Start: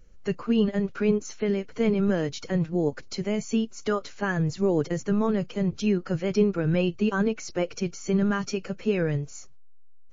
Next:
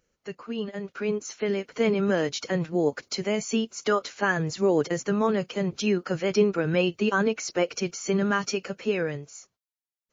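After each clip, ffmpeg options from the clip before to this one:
-af "highpass=f=450:p=1,dynaudnorm=f=120:g=21:m=3.16,volume=0.596"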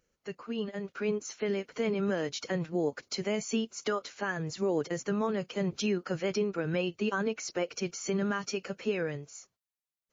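-af "alimiter=limit=0.133:level=0:latency=1:release=464,volume=0.708"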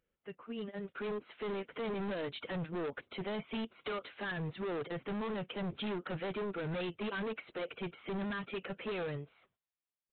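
-af "dynaudnorm=f=600:g=3:m=2.24,aresample=8000,volume=23.7,asoftclip=hard,volume=0.0422,aresample=44100,volume=0.422"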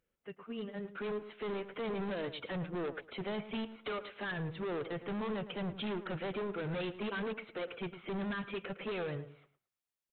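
-filter_complex "[0:a]asplit=2[s0][s1];[s1]adelay=109,lowpass=f=1900:p=1,volume=0.251,asplit=2[s2][s3];[s3]adelay=109,lowpass=f=1900:p=1,volume=0.24,asplit=2[s4][s5];[s5]adelay=109,lowpass=f=1900:p=1,volume=0.24[s6];[s0][s2][s4][s6]amix=inputs=4:normalize=0"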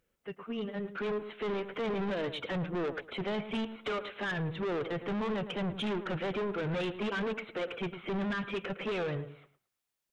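-af "asoftclip=type=tanh:threshold=0.02,volume=2"

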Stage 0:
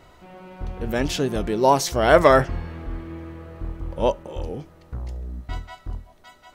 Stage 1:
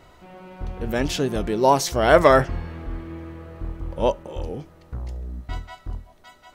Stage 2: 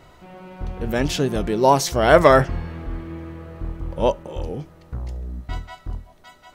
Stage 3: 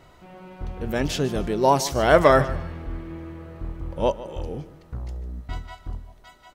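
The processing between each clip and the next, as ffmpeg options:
-af anull
-af "equalizer=f=150:w=2.9:g=3.5,volume=1.19"
-af "aecho=1:1:149|298|447:0.158|0.0444|0.0124,volume=0.708"

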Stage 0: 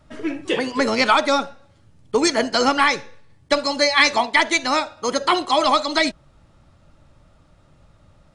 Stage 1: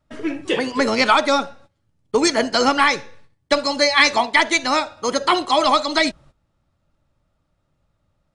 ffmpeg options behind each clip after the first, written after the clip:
-af "agate=range=0.158:threshold=0.00501:ratio=16:detection=peak,volume=1.12"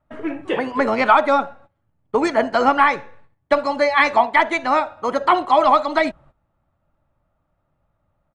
-af "firequalizer=gain_entry='entry(470,0);entry(680,6);entry(5200,-17);entry(7900,-13)':delay=0.05:min_phase=1,volume=0.841"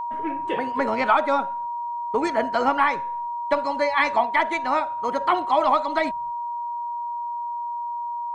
-af "aeval=exprs='val(0)+0.0891*sin(2*PI*950*n/s)':c=same,volume=0.531"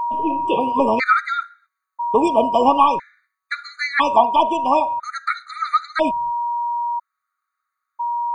-af "afftfilt=real='re*gt(sin(2*PI*0.5*pts/sr)*(1-2*mod(floor(b*sr/1024/1200),2)),0)':imag='im*gt(sin(2*PI*0.5*pts/sr)*(1-2*mod(floor(b*sr/1024/1200),2)),0)':win_size=1024:overlap=0.75,volume=2.24"

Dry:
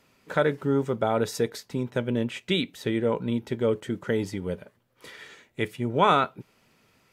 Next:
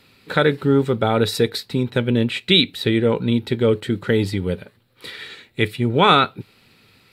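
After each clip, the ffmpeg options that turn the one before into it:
-af "equalizer=f=100:t=o:w=0.33:g=6,equalizer=f=630:t=o:w=0.33:g=-7,equalizer=f=1000:t=o:w=0.33:g=-5,equalizer=f=2500:t=o:w=0.33:g=3,equalizer=f=4000:t=o:w=0.33:g=12,equalizer=f=6300:t=o:w=0.33:g=-10,volume=2.51"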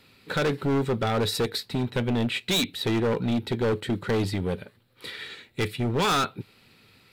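-af "asoftclip=type=hard:threshold=0.126,volume=0.708"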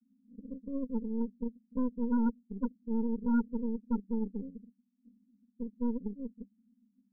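-af "asuperpass=centerf=230:order=12:qfactor=3.2,aeval=exprs='0.0944*(cos(1*acos(clip(val(0)/0.0944,-1,1)))-cos(1*PI/2))+0.015*(cos(6*acos(clip(val(0)/0.0944,-1,1)))-cos(6*PI/2))':c=same,volume=0.891"

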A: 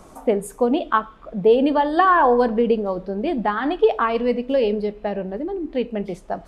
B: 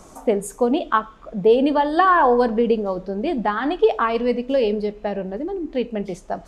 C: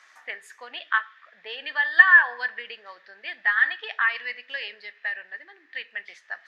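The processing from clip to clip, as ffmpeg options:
-af "equalizer=f=6600:w=1.6:g=8"
-af "highpass=f=1800:t=q:w=11,highshelf=f=6100:t=q:w=1.5:g=-12.5,volume=0.501"

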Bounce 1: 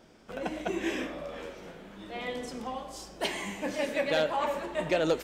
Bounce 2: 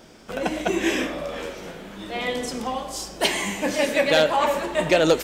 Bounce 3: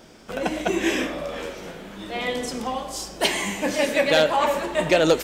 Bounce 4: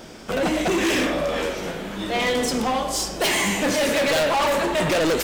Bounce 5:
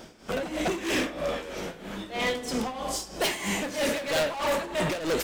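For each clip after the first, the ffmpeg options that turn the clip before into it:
-af "highshelf=f=3800:g=6,volume=2.66"
-af anull
-af "volume=20,asoftclip=hard,volume=0.0501,volume=2.37"
-af "tremolo=f=3.1:d=0.74,volume=0.631"

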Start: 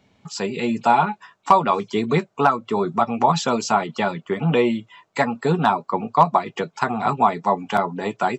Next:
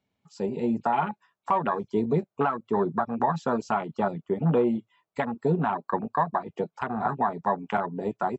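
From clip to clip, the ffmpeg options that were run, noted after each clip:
-af "afwtdn=0.0631,alimiter=limit=0.282:level=0:latency=1:release=183,volume=0.708"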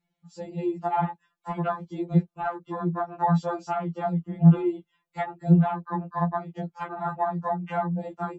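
-af "lowshelf=f=140:g=11.5,afftfilt=real='re*2.83*eq(mod(b,8),0)':imag='im*2.83*eq(mod(b,8),0)':win_size=2048:overlap=0.75"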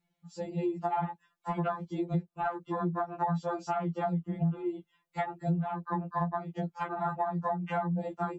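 -af "acompressor=threshold=0.0447:ratio=8"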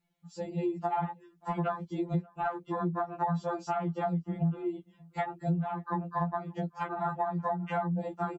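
-filter_complex "[0:a]asplit=2[s0][s1];[s1]adelay=583.1,volume=0.0501,highshelf=f=4000:g=-13.1[s2];[s0][s2]amix=inputs=2:normalize=0"

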